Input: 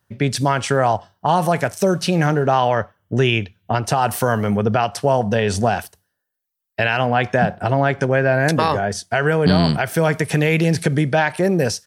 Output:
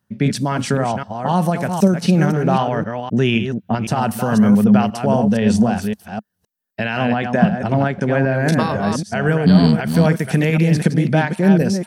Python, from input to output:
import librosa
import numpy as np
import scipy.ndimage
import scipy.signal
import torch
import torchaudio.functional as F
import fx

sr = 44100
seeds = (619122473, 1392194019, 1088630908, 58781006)

p1 = fx.reverse_delay(x, sr, ms=258, wet_db=-6)
p2 = fx.peak_eq(p1, sr, hz=210.0, db=14.0, octaves=0.67)
p3 = fx.volume_shaper(p2, sr, bpm=80, per_beat=2, depth_db=-8, release_ms=213.0, shape='slow start')
p4 = p2 + (p3 * 10.0 ** (-1.5 / 20.0))
y = p4 * 10.0 ** (-8.0 / 20.0)